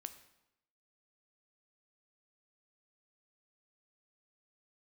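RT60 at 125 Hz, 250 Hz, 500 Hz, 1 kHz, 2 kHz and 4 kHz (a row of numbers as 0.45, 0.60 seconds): 0.90, 0.90, 0.85, 0.85, 0.80, 0.75 seconds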